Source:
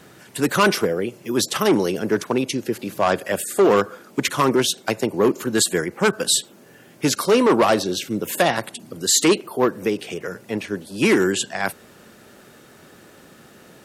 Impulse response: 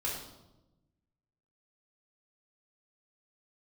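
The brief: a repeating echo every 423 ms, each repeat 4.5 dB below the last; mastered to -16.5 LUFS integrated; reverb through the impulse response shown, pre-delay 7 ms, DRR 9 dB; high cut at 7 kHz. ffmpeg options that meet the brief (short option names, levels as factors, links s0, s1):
-filter_complex "[0:a]lowpass=7000,aecho=1:1:423|846|1269|1692|2115|2538|2961|3384|3807:0.596|0.357|0.214|0.129|0.0772|0.0463|0.0278|0.0167|0.01,asplit=2[s0][s1];[1:a]atrim=start_sample=2205,adelay=7[s2];[s1][s2]afir=irnorm=-1:irlink=0,volume=0.224[s3];[s0][s3]amix=inputs=2:normalize=0,volume=1.33"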